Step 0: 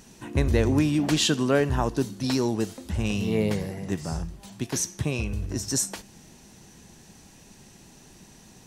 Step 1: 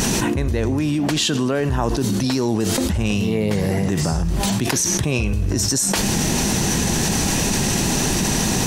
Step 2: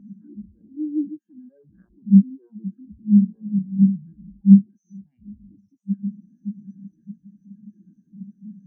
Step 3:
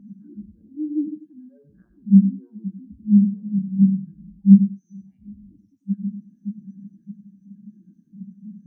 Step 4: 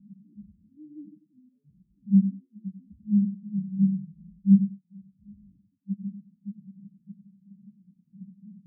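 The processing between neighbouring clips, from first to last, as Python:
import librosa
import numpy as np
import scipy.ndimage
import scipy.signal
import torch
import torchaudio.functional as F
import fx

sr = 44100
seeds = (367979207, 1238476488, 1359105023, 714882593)

y1 = fx.env_flatten(x, sr, amount_pct=100)
y1 = y1 * 10.0 ** (-1.5 / 20.0)
y2 = fx.cheby_harmonics(y1, sr, harmonics=(7,), levels_db=(-8,), full_scale_db=-3.0)
y2 = fx.graphic_eq_31(y2, sr, hz=(200, 315, 1600, 4000, 6300), db=(12, 6, 9, -10, 5))
y2 = fx.spectral_expand(y2, sr, expansion=4.0)
y2 = y2 * 10.0 ** (-1.5 / 20.0)
y3 = fx.echo_feedback(y2, sr, ms=94, feedback_pct=17, wet_db=-10.0)
y4 = fx.ladder_lowpass(y3, sr, hz=200.0, resonance_pct=40)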